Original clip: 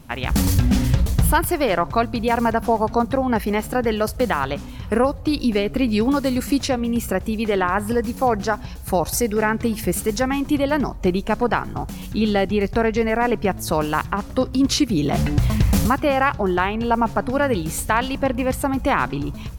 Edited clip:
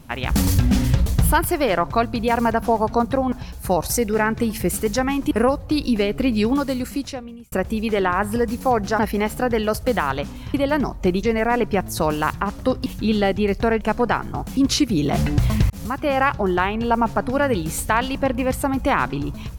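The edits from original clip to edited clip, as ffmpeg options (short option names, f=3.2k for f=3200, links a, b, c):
-filter_complex "[0:a]asplit=11[a][b][c][d][e][f][g][h][i][j][k];[a]atrim=end=3.322[l];[b]atrim=start=8.548:end=10.542[m];[c]atrim=start=4.868:end=7.08,asetpts=PTS-STARTPTS,afade=t=out:st=1.112:d=1.1[n];[d]atrim=start=7.08:end=8.552,asetpts=PTS-STARTPTS,afade=t=in:d=0.004:c=hsin[o];[e]atrim=start=3.318:end=4.872[p];[f]atrim=start=10.538:end=11.232[q];[g]atrim=start=12.938:end=14.572[r];[h]atrim=start=11.988:end=12.942[s];[i]atrim=start=11.228:end=11.992[t];[j]atrim=start=14.568:end=15.7,asetpts=PTS-STARTPTS,afade=t=out:st=1.128:d=0.004:c=hsin[u];[k]atrim=start=15.7,asetpts=PTS-STARTPTS,afade=t=in:d=0.49[v];[l][m]acrossfade=d=0.004:c1=hsin:c2=hsin[w];[n][o]concat=n=2:v=0:a=1[x];[w][x]acrossfade=d=0.004:c1=hsin:c2=hsin[y];[y][p]acrossfade=d=0.004:c1=hsin:c2=hsin[z];[z][q]acrossfade=d=0.004:c1=hsin:c2=hsin[aa];[aa][r]acrossfade=d=0.004:c1=hsin:c2=hsin[ab];[ab][s]acrossfade=d=0.004:c1=hsin:c2=hsin[ac];[ac][t]acrossfade=d=0.004:c1=hsin:c2=hsin[ad];[u][v]concat=n=2:v=0:a=1[ae];[ad][ae]acrossfade=d=0.004:c1=hsin:c2=hsin"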